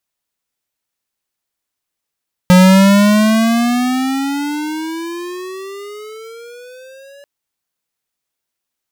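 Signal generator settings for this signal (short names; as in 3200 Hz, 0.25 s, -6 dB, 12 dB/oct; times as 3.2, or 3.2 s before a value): gliding synth tone square, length 4.74 s, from 180 Hz, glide +20 st, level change -34 dB, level -5.5 dB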